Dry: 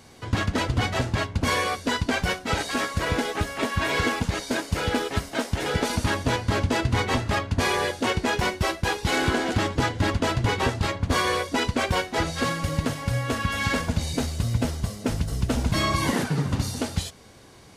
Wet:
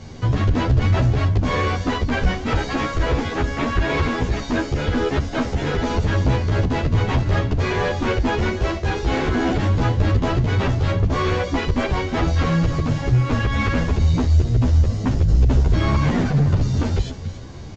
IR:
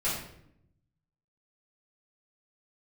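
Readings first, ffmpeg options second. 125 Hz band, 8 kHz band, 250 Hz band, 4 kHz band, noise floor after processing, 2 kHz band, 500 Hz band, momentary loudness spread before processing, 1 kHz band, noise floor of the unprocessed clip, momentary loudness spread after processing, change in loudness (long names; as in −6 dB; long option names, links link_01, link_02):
+9.0 dB, −6.5 dB, +5.0 dB, −2.5 dB, −30 dBFS, 0.0 dB, +3.5 dB, 4 LU, +1.0 dB, −47 dBFS, 5 LU, +5.0 dB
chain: -filter_complex "[0:a]lowshelf=frequency=380:gain=8.5,acompressor=threshold=-19dB:ratio=6,aecho=1:1:282:0.141,aeval=exprs='0.282*sin(PI/2*2.51*val(0)/0.282)':channel_layout=same,acrossover=split=3300[link_01][link_02];[link_02]acompressor=threshold=-32dB:ratio=4:attack=1:release=60[link_03];[link_01][link_03]amix=inputs=2:normalize=0,aresample=16000,aresample=44100,lowshelf=frequency=97:gain=11,asplit=2[link_04][link_05];[link_05]adelay=11.3,afreqshift=2.5[link_06];[link_04][link_06]amix=inputs=2:normalize=1,volume=-3.5dB"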